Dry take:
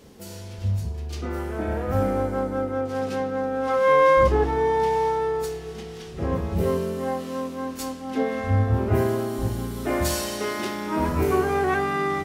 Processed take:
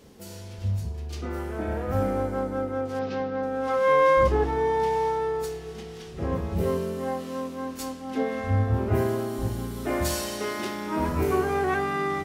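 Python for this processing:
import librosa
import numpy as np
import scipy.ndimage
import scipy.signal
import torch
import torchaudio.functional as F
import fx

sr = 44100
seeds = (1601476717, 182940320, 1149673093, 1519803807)

y = fx.cheby2_lowpass(x, sr, hz=9600.0, order=4, stop_db=40, at=(2.99, 3.43))
y = F.gain(torch.from_numpy(y), -2.5).numpy()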